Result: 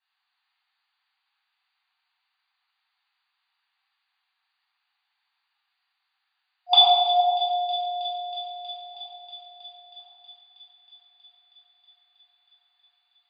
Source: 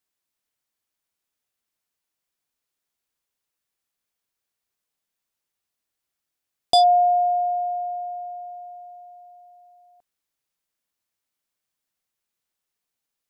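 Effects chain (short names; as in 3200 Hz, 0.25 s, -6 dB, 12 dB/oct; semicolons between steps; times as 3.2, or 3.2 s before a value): 7.2–8.95 tilt +3 dB/oct; reverb RT60 1.6 s, pre-delay 10 ms, DRR -10 dB; FFT band-pass 720–4800 Hz; thin delay 0.319 s, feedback 80%, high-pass 2200 Hz, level -13 dB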